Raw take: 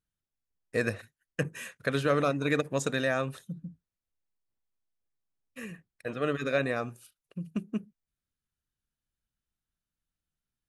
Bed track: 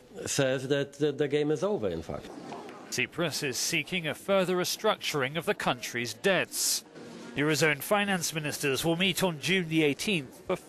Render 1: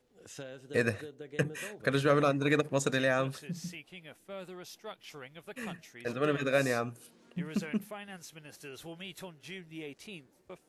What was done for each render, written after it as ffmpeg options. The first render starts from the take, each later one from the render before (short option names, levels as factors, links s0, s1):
-filter_complex "[1:a]volume=0.126[s0];[0:a][s0]amix=inputs=2:normalize=0"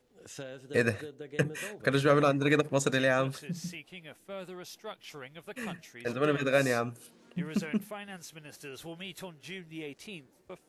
-af "volume=1.26"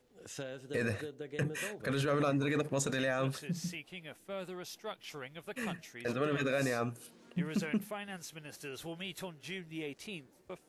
-af "alimiter=limit=0.0708:level=0:latency=1:release=17"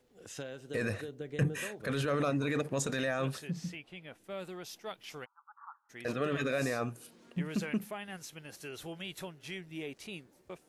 -filter_complex "[0:a]asettb=1/sr,asplit=3[s0][s1][s2];[s0]atrim=end=1.084[s3];[s1]atrim=start=1.08:end=1.61,asetpts=PTS-STARTPTS,afade=t=in:d=0.004:c=qsin,afade=t=out:st=0.526:d=0.004:c=qsin,lowshelf=f=200:g=9[s4];[s2]atrim=start=1.606[s5];[s3][s4]acrossfade=d=0.004:c1=hsin:c2=qsin[s6];[s6][s5]acrossfade=d=0.004:c1=qsin:c2=hsin,asettb=1/sr,asplit=3[s7][s8][s9];[s7]atrim=end=3.504[s10];[s8]atrim=start=3.5:end=4.24,asetpts=PTS-STARTPTS,afade=t=in:d=0.004:c=qsin,afade=t=out:st=0.736:d=0.004:c=qsin,lowpass=f=3400:p=1[s11];[s9]atrim=start=4.236[s12];[s10][s11]acrossfade=d=0.004:c1=hsin:c2=qsin[s13];[s13][s12]acrossfade=d=0.004:c1=qsin:c2=hsin,asplit=3[s14][s15][s16];[s14]afade=t=out:st=5.24:d=0.02[s17];[s15]asuperpass=centerf=1100:order=12:qfactor=1.9,afade=t=in:st=5.24:d=0.02,afade=t=out:st=5.89:d=0.02[s18];[s16]afade=t=in:st=5.89:d=0.02[s19];[s17][s18][s19]amix=inputs=3:normalize=0"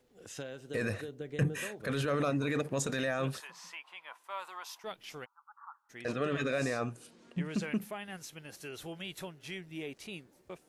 -filter_complex "[0:a]asettb=1/sr,asplit=3[s0][s1][s2];[s0]atrim=end=3.404[s3];[s1]atrim=start=3.4:end=4.84,asetpts=PTS-STARTPTS,afade=t=in:d=0.004:c=qsin,afade=t=out:st=1.436:d=0.004:c=qsin,highpass=f=1000:t=q:w=8.8[s4];[s2]atrim=start=4.836[s5];[s3][s4]acrossfade=d=0.004:c1=hsin:c2=qsin[s6];[s6][s5]acrossfade=d=0.004:c1=qsin:c2=hsin,asettb=1/sr,asplit=3[s7][s8][s9];[s7]atrim=end=5.994[s10];[s8]atrim=start=5.99:end=7.64,asetpts=PTS-STARTPTS,afade=t=in:d=0.004:c=qsin,afade=t=out:st=1.646:d=0.004:c=qsin,lowpass=f=9800:w=0.5412,lowpass=f=9800:w=1.3066[s11];[s9]atrim=start=7.636[s12];[s10][s11]acrossfade=d=0.004:c1=hsin:c2=qsin[s13];[s13][s12]acrossfade=d=0.004:c1=qsin:c2=hsin"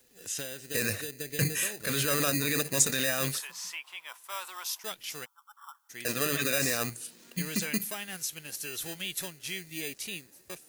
-filter_complex "[0:a]acrossover=split=730|1200[s0][s1][s2];[s0]acrusher=samples=20:mix=1:aa=0.000001[s3];[s3][s1][s2]amix=inputs=3:normalize=0,crystalizer=i=4.5:c=0"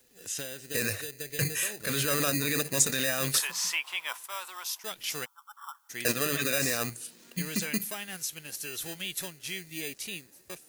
-filter_complex "[0:a]asettb=1/sr,asplit=3[s0][s1][s2];[s0]atrim=end=0.884[s3];[s1]atrim=start=0.88:end=1.69,asetpts=PTS-STARTPTS,afade=t=in:d=0.004:c=qsin,afade=t=out:st=0.806:d=0.004:c=qsin,equalizer=f=230:t=o:w=0.77:g=-9[s4];[s2]atrim=start=1.686[s5];[s3][s4]acrossfade=d=0.004:c1=hsin:c2=qsin[s6];[s6][s5]acrossfade=d=0.004:c1=qsin:c2=hsin,asplit=3[s7][s8][s9];[s7]afade=t=out:st=4.95:d=0.02[s10];[s8]acontrast=27,afade=t=in:st=4.95:d=0.02,afade=t=out:st=6.11:d=0.02[s11];[s9]afade=t=in:st=6.11:d=0.02[s12];[s10][s11][s12]amix=inputs=3:normalize=0,asplit=3[s13][s14][s15];[s13]atrim=end=3.342[s16];[s14]atrim=start=3.338:end=4.262,asetpts=PTS-STARTPTS,volume=2.82[s17];[s15]atrim=start=4.258[s18];[s16][s17]acrossfade=d=0.004:c1=hsin:c2=hsin[s19];[s19][s18]acrossfade=d=0.004:c1=hsin:c2=hsin"